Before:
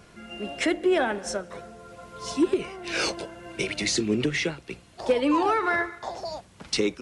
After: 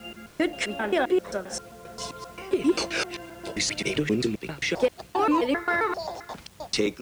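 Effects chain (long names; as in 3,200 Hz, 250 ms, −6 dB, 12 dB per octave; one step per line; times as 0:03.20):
slices reordered back to front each 132 ms, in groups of 3
bit reduction 9 bits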